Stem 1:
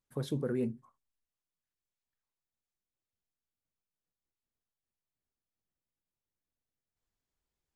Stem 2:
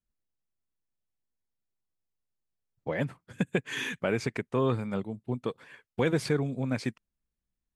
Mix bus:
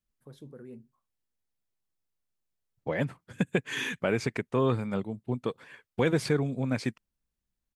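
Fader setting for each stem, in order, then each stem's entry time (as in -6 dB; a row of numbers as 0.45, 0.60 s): -13.5, +1.0 dB; 0.10, 0.00 s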